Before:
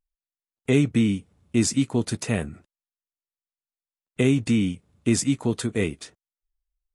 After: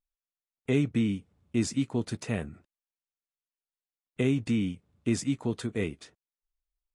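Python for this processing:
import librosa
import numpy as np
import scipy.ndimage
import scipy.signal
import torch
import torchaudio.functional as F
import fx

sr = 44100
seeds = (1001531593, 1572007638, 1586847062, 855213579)

y = fx.high_shelf(x, sr, hz=7800.0, db=-11.0)
y = y * librosa.db_to_amplitude(-6.0)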